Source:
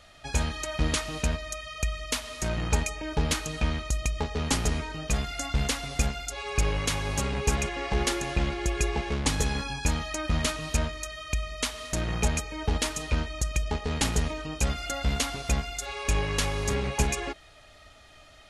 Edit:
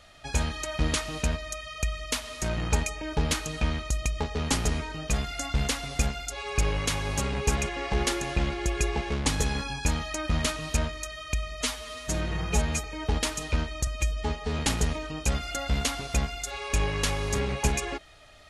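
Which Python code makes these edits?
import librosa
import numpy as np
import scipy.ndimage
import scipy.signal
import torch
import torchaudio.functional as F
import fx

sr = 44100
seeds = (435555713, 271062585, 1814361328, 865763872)

y = fx.edit(x, sr, fx.stretch_span(start_s=11.61, length_s=0.82, factor=1.5),
    fx.stretch_span(start_s=13.46, length_s=0.48, factor=1.5), tone=tone)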